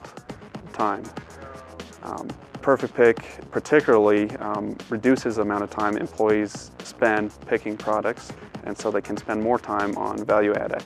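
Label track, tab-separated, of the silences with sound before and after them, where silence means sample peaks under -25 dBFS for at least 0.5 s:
1.180000	1.800000	silence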